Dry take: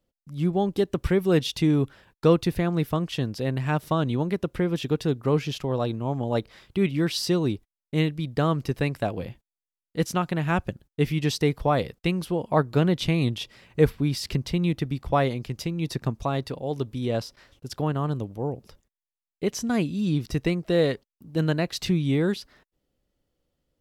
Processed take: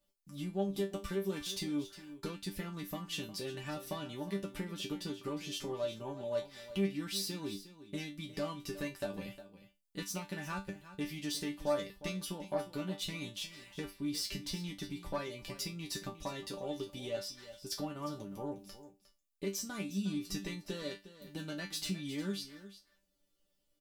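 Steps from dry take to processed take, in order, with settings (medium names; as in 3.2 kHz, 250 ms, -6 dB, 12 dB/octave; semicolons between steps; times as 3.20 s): self-modulated delay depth 0.12 ms; treble shelf 3.4 kHz +11 dB; compression, threshold -29 dBFS, peak gain reduction 15.5 dB; chord resonator G3 fifth, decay 0.22 s; on a send: delay 358 ms -14.5 dB; on the sum: trim +8 dB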